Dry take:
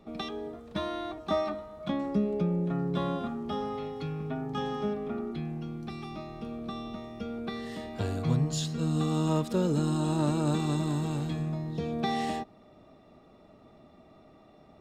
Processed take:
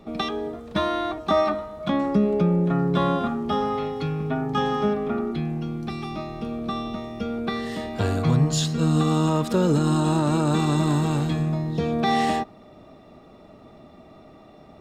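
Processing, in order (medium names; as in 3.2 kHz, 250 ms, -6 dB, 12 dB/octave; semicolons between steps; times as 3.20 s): dynamic bell 1.3 kHz, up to +4 dB, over -44 dBFS, Q 0.97; peak limiter -19 dBFS, peak gain reduction 5.5 dB; trim +8 dB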